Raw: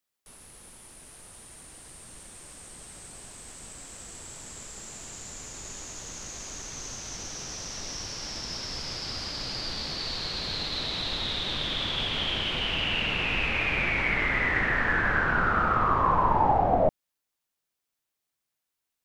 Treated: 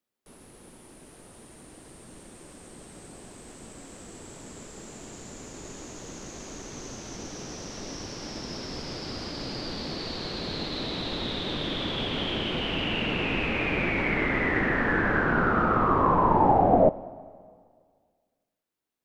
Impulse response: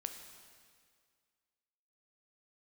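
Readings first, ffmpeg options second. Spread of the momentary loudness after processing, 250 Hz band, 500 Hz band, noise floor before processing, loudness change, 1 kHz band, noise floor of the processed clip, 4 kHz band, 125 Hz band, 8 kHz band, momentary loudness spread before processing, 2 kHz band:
22 LU, +7.5 dB, +5.0 dB, -84 dBFS, +1.0 dB, +1.0 dB, -80 dBFS, -3.5 dB, +2.5 dB, -5.5 dB, 21 LU, -2.0 dB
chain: -filter_complex "[0:a]equalizer=f=300:t=o:w=2.4:g=11.5,asplit=2[s0][s1];[1:a]atrim=start_sample=2205,lowpass=5100[s2];[s1][s2]afir=irnorm=-1:irlink=0,volume=0.473[s3];[s0][s3]amix=inputs=2:normalize=0,volume=0.531"

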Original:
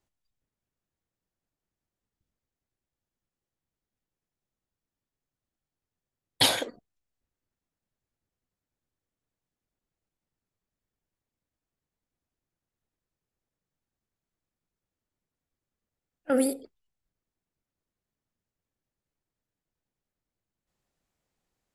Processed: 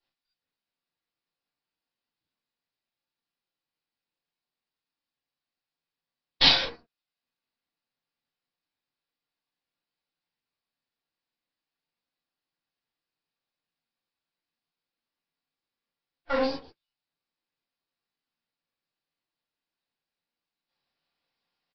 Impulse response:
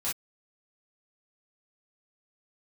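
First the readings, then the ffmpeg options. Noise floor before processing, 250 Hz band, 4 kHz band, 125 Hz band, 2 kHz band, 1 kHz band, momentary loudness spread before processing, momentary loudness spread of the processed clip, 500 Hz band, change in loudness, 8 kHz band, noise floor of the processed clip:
under -85 dBFS, -5.0 dB, +5.0 dB, +1.0 dB, +4.5 dB, +2.5 dB, 16 LU, 15 LU, -1.0 dB, +3.0 dB, -14.5 dB, under -85 dBFS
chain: -filter_complex "[0:a]highpass=180,lowshelf=f=350:g=-6.5,aresample=11025,aeval=exprs='max(val(0),0)':c=same,aresample=44100,highshelf=f=2500:g=9[s0];[1:a]atrim=start_sample=2205[s1];[s0][s1]afir=irnorm=-1:irlink=0"

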